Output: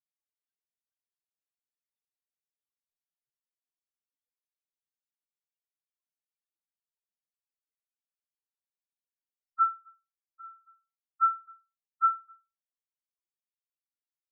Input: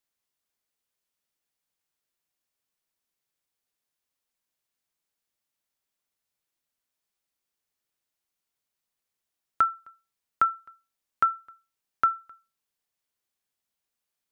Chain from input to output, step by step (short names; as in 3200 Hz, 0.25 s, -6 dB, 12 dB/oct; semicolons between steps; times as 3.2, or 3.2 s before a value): loudest bins only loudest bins 1; endless flanger 2 ms -0.4 Hz; gain +5.5 dB